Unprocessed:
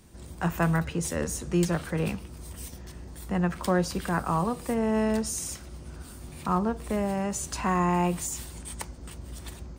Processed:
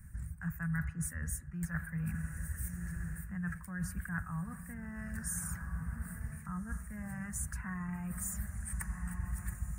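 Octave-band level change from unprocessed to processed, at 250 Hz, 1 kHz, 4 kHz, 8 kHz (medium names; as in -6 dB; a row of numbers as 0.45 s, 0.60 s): -12.0 dB, -20.0 dB, -24.0 dB, -7.0 dB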